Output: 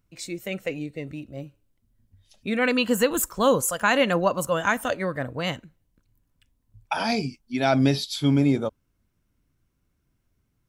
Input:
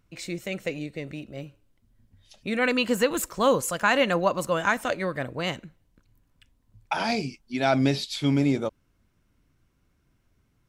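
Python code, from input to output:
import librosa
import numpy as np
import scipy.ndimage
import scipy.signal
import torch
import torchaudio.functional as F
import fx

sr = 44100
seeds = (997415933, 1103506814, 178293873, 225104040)

y = fx.low_shelf(x, sr, hz=410.0, db=3.5)
y = fx.noise_reduce_blind(y, sr, reduce_db=7)
y = fx.high_shelf(y, sr, hz=7700.0, db=8.5)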